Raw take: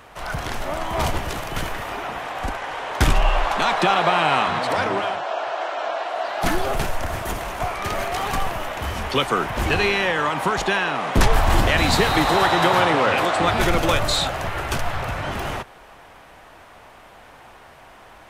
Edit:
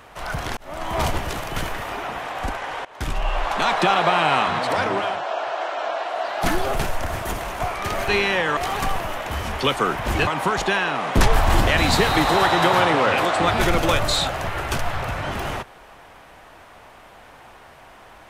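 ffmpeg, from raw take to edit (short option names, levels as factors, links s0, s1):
-filter_complex "[0:a]asplit=6[s0][s1][s2][s3][s4][s5];[s0]atrim=end=0.57,asetpts=PTS-STARTPTS,afade=t=out:st=0.566:d=0.004:c=hsin[s6];[s1]atrim=start=0.57:end=2.85,asetpts=PTS-STARTPTS,afade=t=in:d=0.33,afade=t=out:st=2.276:d=0.004:c=hsin:silence=0.1[s7];[s2]atrim=start=2.85:end=8.082,asetpts=PTS-STARTPTS,afade=t=in:d=0.83:silence=0.1[s8];[s3]atrim=start=9.778:end=10.272[s9];[s4]atrim=start=8.078:end=9.782[s10];[s5]atrim=start=10.268[s11];[s6][s7][s8]concat=n=3:v=0:a=1[s12];[s12][s9]acrossfade=d=0.004:c1=hsin:c2=hsin[s13];[s13][s10]acrossfade=d=0.004:c1=hsin:c2=hsin[s14];[s14][s11]acrossfade=d=0.004:c1=hsin:c2=hsin"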